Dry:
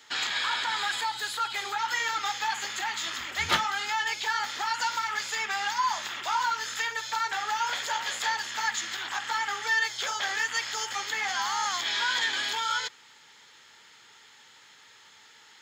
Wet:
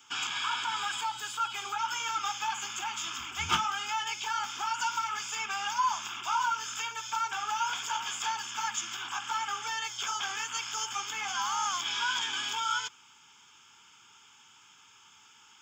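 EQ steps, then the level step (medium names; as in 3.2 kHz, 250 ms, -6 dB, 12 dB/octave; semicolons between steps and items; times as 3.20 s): static phaser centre 2.8 kHz, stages 8; 0.0 dB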